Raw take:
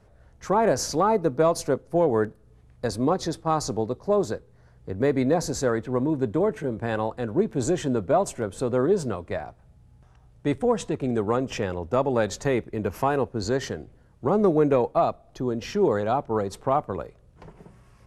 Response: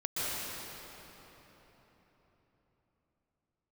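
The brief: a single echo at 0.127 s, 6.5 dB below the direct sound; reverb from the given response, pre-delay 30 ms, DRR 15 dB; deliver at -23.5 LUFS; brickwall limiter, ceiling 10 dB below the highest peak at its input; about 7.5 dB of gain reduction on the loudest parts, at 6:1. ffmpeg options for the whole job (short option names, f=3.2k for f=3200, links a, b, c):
-filter_complex "[0:a]acompressor=threshold=-24dB:ratio=6,alimiter=limit=-23dB:level=0:latency=1,aecho=1:1:127:0.473,asplit=2[a][b];[1:a]atrim=start_sample=2205,adelay=30[c];[b][c]afir=irnorm=-1:irlink=0,volume=-23dB[d];[a][d]amix=inputs=2:normalize=0,volume=9.5dB"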